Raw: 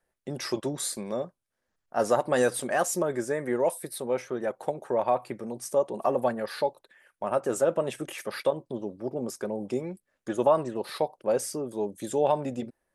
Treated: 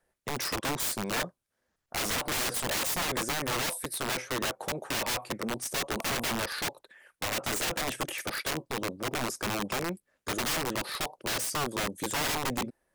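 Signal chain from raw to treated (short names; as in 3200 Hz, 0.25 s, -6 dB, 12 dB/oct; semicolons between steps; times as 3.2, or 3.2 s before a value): added harmonics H 5 -22 dB, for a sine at -10.5 dBFS; wrapped overs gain 25 dB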